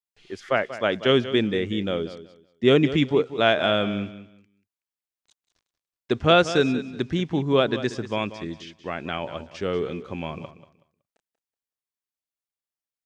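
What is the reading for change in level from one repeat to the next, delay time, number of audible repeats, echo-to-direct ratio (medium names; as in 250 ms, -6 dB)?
-13.0 dB, 187 ms, 2, -13.5 dB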